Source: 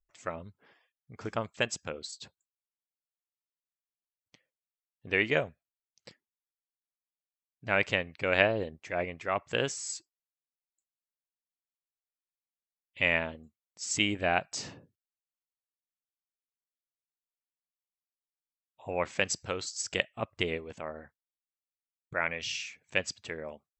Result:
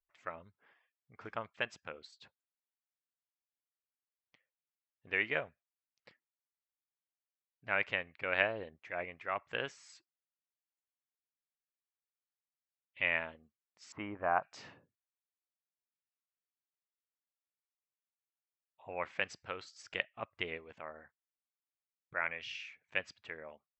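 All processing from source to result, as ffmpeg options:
ffmpeg -i in.wav -filter_complex "[0:a]asettb=1/sr,asplit=3[link_01][link_02][link_03];[link_01]atrim=end=13.924[link_04];[link_02]atrim=start=13.92:end=14.43,asetpts=PTS-STARTPTS,afade=type=in:duration=0.004:curve=qsin,afade=type=out:start_time=0.506:duration=0.004:curve=qsin,lowpass=frequency=1100:width_type=q:width=3.1,aemphasis=mode=reproduction:type=50fm[link_05];[link_03]atrim=start=14.426[link_06];[link_04][link_05]acrossfade=duration=0.004:curve1=hsin:curve2=qsin[link_07];[link_07][link_06]acrossfade=duration=0.004:curve1=qsin:curve2=hsin,lowpass=2000,tiltshelf=frequency=790:gain=-7.5,volume=-6.5dB" out.wav

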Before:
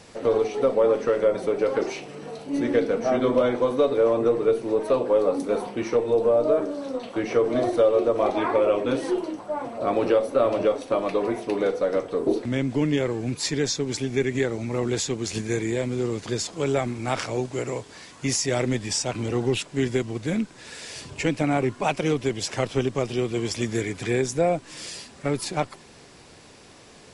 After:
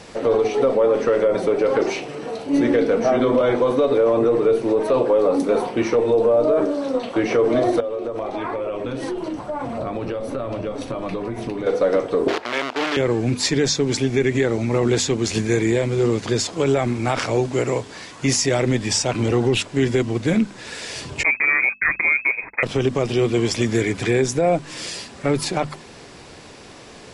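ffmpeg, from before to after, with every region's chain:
ffmpeg -i in.wav -filter_complex "[0:a]asettb=1/sr,asplit=3[link_01][link_02][link_03];[link_01]atrim=end=7.804[link_04];[link_02]atrim=start=7.8:end=11.67,asetpts=PTS-STARTPTS,afade=type=in:duration=0.004:curve=qsin,afade=type=out:start_time=3.866:duration=0.004:curve=qsin,asubboost=boost=6:cutoff=190,acompressor=threshold=-30dB:ratio=12:attack=3.2:release=140:knee=1:detection=peak[link_05];[link_03]atrim=start=11.666[link_06];[link_04][link_05]acrossfade=duration=0.004:curve1=hsin:curve2=qsin[link_07];[link_07][link_06]acrossfade=duration=0.004:curve1=qsin:curve2=hsin,asettb=1/sr,asplit=3[link_08][link_09][link_10];[link_08]atrim=end=12.284[link_11];[link_09]atrim=start=12.28:end=12.97,asetpts=PTS-STARTPTS,afade=type=in:duration=0.004:curve=qsin,afade=type=out:start_time=0.686:duration=0.004:curve=qsin,equalizer=frequency=1200:width=3.9:gain=4,acrusher=bits=5:dc=4:mix=0:aa=0.000001,highpass=620,lowpass=4300[link_12];[link_10]atrim=start=12.966[link_13];[link_11][link_12]acrossfade=duration=0.004:curve1=hsin:curve2=qsin[link_14];[link_14][link_13]acrossfade=duration=0.004:curve1=qsin:curve2=hsin,asettb=1/sr,asplit=3[link_15][link_16][link_17];[link_15]atrim=end=21.234[link_18];[link_16]atrim=start=21.23:end=22.63,asetpts=PTS-STARTPTS,afade=type=in:duration=0.004:curve=qsin,afade=type=out:start_time=1.396:duration=0.004:curve=qsin,agate=range=-51dB:threshold=-33dB:ratio=16:release=100:detection=peak,lowpass=frequency=2200:width_type=q:width=0.5098,lowpass=frequency=2200:width_type=q:width=0.6013,lowpass=frequency=2200:width_type=q:width=0.9,lowpass=frequency=2200:width_type=q:width=2.563,afreqshift=-2600[link_19];[link_17]atrim=start=22.626[link_20];[link_18][link_19]acrossfade=duration=0.004:curve1=hsin:curve2=qsin[link_21];[link_21][link_20]acrossfade=duration=0.004:curve1=qsin:curve2=hsin,highshelf=frequency=7500:gain=-7,bandreject=frequency=50:width_type=h:width=6,bandreject=frequency=100:width_type=h:width=6,bandreject=frequency=150:width_type=h:width=6,bandreject=frequency=200:width_type=h:width=6,bandreject=frequency=250:width_type=h:width=6,alimiter=level_in=16.5dB:limit=-1dB:release=50:level=0:latency=1,volume=-8.5dB" out.wav

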